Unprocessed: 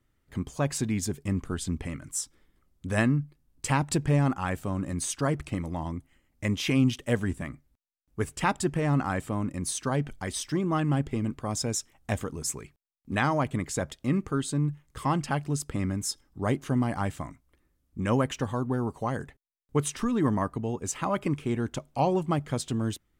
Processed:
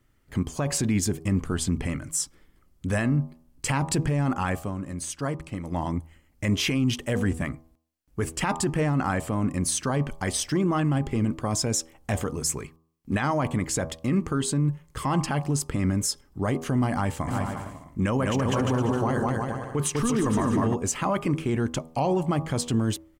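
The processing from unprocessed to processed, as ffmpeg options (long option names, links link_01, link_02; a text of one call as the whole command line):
ffmpeg -i in.wav -filter_complex "[0:a]asplit=3[link_01][link_02][link_03];[link_01]afade=type=out:start_time=17.27:duration=0.02[link_04];[link_02]aecho=1:1:200|350|462.5|546.9|610.2|657.6:0.631|0.398|0.251|0.158|0.1|0.0631,afade=type=in:start_time=17.27:duration=0.02,afade=type=out:start_time=20.73:duration=0.02[link_05];[link_03]afade=type=in:start_time=20.73:duration=0.02[link_06];[link_04][link_05][link_06]amix=inputs=3:normalize=0,asplit=3[link_07][link_08][link_09];[link_07]atrim=end=4.72,asetpts=PTS-STARTPTS,afade=type=out:start_time=4.5:duration=0.22:silence=0.375837[link_10];[link_08]atrim=start=4.72:end=5.6,asetpts=PTS-STARTPTS,volume=-8.5dB[link_11];[link_09]atrim=start=5.6,asetpts=PTS-STARTPTS,afade=type=in:duration=0.22:silence=0.375837[link_12];[link_10][link_11][link_12]concat=n=3:v=0:a=1,bandreject=frequency=3700:width=17,bandreject=frequency=80.83:width_type=h:width=4,bandreject=frequency=161.66:width_type=h:width=4,bandreject=frequency=242.49:width_type=h:width=4,bandreject=frequency=323.32:width_type=h:width=4,bandreject=frequency=404.15:width_type=h:width=4,bandreject=frequency=484.98:width_type=h:width=4,bandreject=frequency=565.81:width_type=h:width=4,bandreject=frequency=646.64:width_type=h:width=4,bandreject=frequency=727.47:width_type=h:width=4,bandreject=frequency=808.3:width_type=h:width=4,bandreject=frequency=889.13:width_type=h:width=4,bandreject=frequency=969.96:width_type=h:width=4,bandreject=frequency=1050.79:width_type=h:width=4,bandreject=frequency=1131.62:width_type=h:width=4,bandreject=frequency=1212.45:width_type=h:width=4,alimiter=limit=-22.5dB:level=0:latency=1:release=24,volume=6.5dB" out.wav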